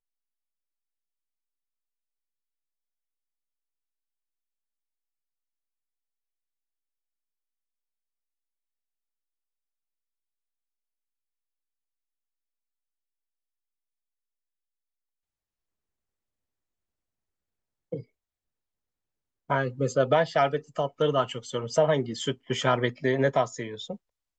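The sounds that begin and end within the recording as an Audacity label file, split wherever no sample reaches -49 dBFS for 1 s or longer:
17.920000	18.030000	sound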